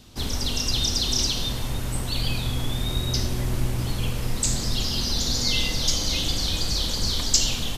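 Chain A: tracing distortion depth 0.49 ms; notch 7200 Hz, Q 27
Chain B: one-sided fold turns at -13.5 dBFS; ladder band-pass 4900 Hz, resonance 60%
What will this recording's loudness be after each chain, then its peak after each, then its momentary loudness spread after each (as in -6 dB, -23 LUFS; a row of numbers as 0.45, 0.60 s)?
-25.5, -31.0 LUFS; -5.0, -12.5 dBFS; 6, 16 LU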